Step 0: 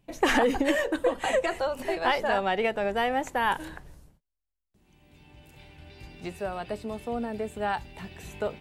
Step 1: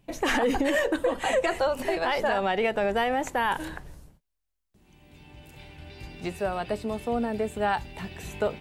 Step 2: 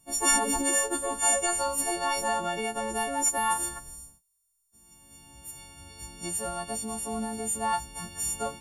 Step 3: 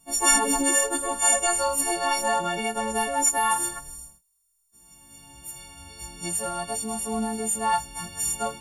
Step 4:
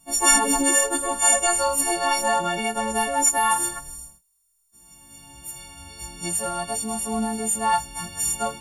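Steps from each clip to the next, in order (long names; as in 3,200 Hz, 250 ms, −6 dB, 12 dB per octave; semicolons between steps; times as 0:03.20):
brickwall limiter −20 dBFS, peak gain reduction 9 dB; level +4 dB
every partial snapped to a pitch grid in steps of 4 semitones; octave-band graphic EQ 125/500/1,000/2,000/4,000/8,000 Hz −3/−8/+4/−10/−7/+12 dB; level −2 dB
harmonic and percussive parts rebalanced harmonic +7 dB; flanger 0.69 Hz, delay 4.2 ms, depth 3.9 ms, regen −50%; level +1 dB
notch filter 460 Hz, Q 12; level +2.5 dB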